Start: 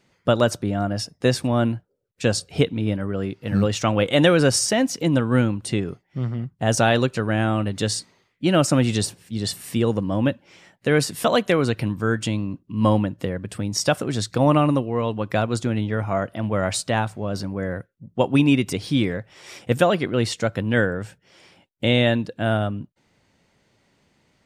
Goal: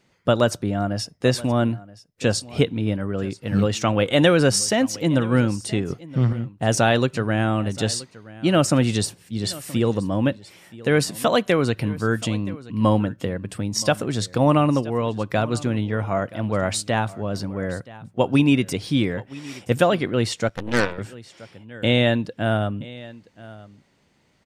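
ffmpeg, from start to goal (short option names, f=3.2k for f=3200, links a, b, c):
-filter_complex "[0:a]asettb=1/sr,asplit=3[a][b][c];[a]atrim=end=5.904[d];[b]atrim=start=5.9:end=6.33,asetpts=PTS-STARTPTS,afade=t=in:d=0.004:c=qsin,afade=t=out:st=0.426:d=0.004:c=qsin,acontrast=68[e];[c]atrim=start=6.326[f];[d][e]acrossfade=d=0.004:c1=hsin:c2=qsin[g];[g][f]acrossfade=d=0.004:c1=qsin:c2=hsin,aecho=1:1:975:0.106,asettb=1/sr,asplit=3[h][i][j];[h]atrim=end=20.484[k];[i]atrim=start=20.48:end=20.98,asetpts=PTS-STARTPTS,afade=t=in:d=0.004:c=qsin,afade=t=out:st=0.496:d=0.004:c=qsin,aeval=exprs='0.562*(cos(1*acos(clip(val(0)/0.562,-1,1)))-cos(1*PI/2))+0.0562*(cos(7*acos(clip(val(0)/0.562,-1,1)))-cos(7*PI/2))+0.0631*(cos(8*acos(clip(val(0)/0.562,-1,1)))-cos(8*PI/2))':c=same[l];[j]atrim=start=20.976[m];[k][l]acrossfade=d=0.004:c1=hsin:c2=qsin[n];[n][m]acrossfade=d=0.004:c1=qsin:c2=hsin"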